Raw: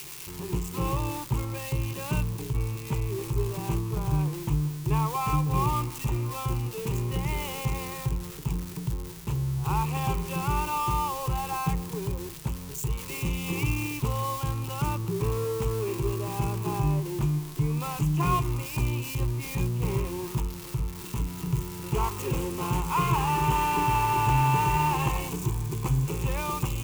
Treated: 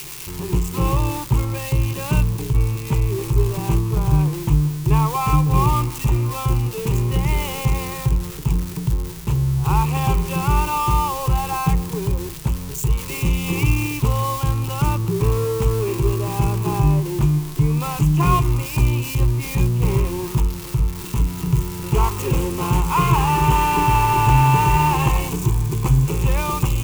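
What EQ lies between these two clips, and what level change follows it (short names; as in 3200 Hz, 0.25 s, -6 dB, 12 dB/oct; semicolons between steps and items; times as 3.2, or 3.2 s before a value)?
low shelf 88 Hz +6.5 dB; +7.0 dB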